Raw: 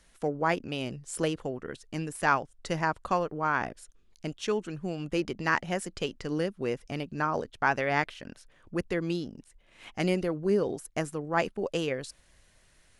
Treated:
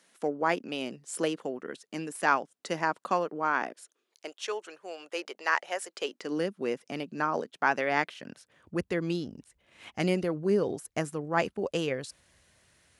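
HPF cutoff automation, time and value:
HPF 24 dB/oct
3.41 s 200 Hz
4.43 s 480 Hz
5.85 s 480 Hz
6.42 s 180 Hz
8.07 s 180 Hz
8.78 s 62 Hz

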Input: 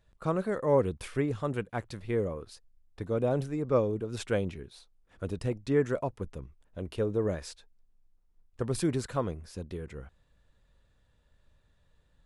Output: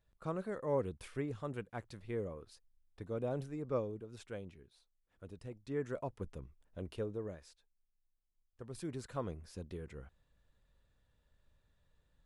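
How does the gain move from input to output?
3.73 s -9.5 dB
4.23 s -16 dB
5.49 s -16 dB
6.22 s -6 dB
6.84 s -6 dB
7.45 s -17 dB
8.65 s -17 dB
9.35 s -6.5 dB

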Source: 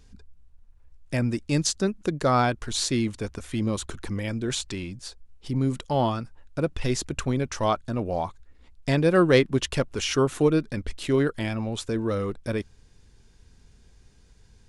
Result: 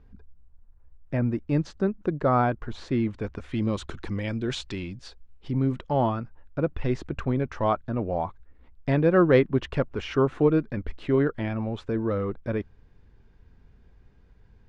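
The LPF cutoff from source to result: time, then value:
2.83 s 1500 Hz
3.78 s 3800 Hz
5.03 s 3800 Hz
5.95 s 1900 Hz

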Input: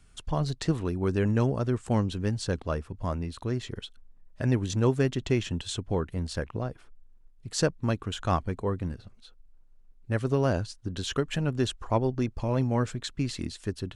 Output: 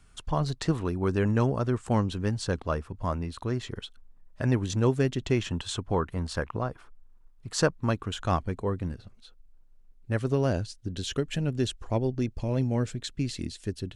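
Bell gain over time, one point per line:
bell 1100 Hz 1.1 oct
4.57 s +4 dB
5.14 s -3.5 dB
5.57 s +8.5 dB
7.6 s +8.5 dB
8.27 s -0.5 dB
10.17 s -0.5 dB
10.81 s -9 dB

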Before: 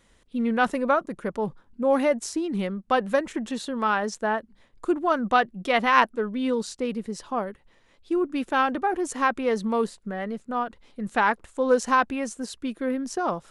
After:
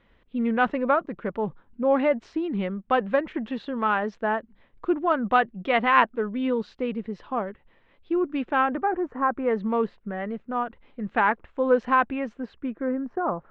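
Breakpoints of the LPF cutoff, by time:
LPF 24 dB/oct
8.41 s 3100 Hz
9.27 s 1400 Hz
9.63 s 2800 Hz
12.36 s 2800 Hz
12.96 s 1600 Hz

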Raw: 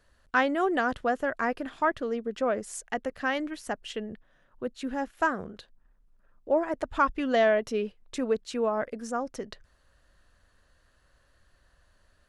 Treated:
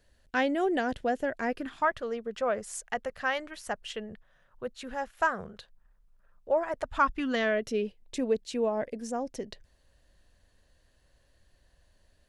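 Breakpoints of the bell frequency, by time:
bell -13 dB 0.6 oct
1.47 s 1200 Hz
1.93 s 290 Hz
6.8 s 290 Hz
7.84 s 1300 Hz

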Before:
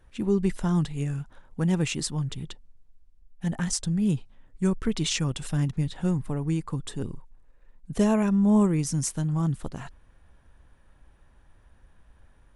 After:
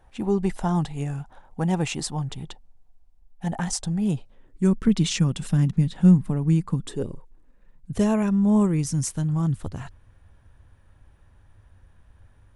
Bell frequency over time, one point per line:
bell +12.5 dB 0.64 oct
4.07 s 780 Hz
4.84 s 190 Hz
6.79 s 190 Hz
7.07 s 630 Hz
7.94 s 96 Hz

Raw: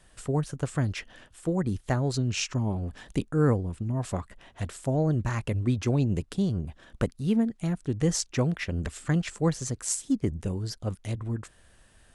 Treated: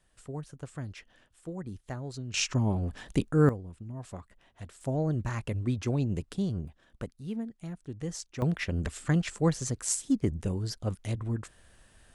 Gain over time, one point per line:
-11.5 dB
from 2.34 s +1 dB
from 3.49 s -11 dB
from 4.81 s -4 dB
from 6.68 s -11 dB
from 8.42 s -0.5 dB

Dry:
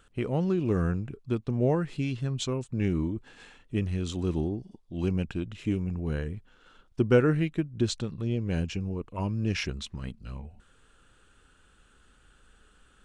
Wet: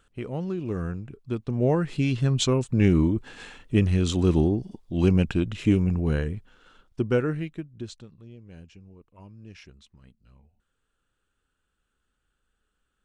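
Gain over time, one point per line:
1.01 s -3.5 dB
2.27 s +8 dB
5.88 s +8 dB
7.5 s -5 dB
8.32 s -17 dB

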